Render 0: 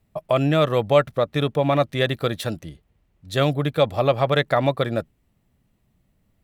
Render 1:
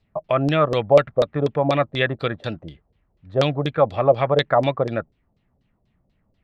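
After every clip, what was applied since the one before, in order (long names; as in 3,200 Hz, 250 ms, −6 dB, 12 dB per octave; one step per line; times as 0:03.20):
auto-filter low-pass saw down 4.1 Hz 460–5,000 Hz
level −1.5 dB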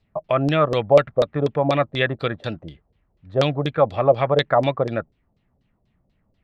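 no processing that can be heard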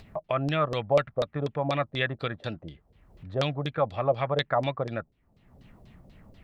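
dynamic equaliser 390 Hz, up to −5 dB, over −27 dBFS, Q 0.8
upward compression, threshold −29 dBFS
level −5.5 dB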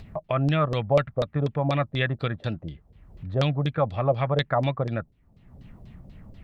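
bass and treble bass +7 dB, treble −2 dB
level +1 dB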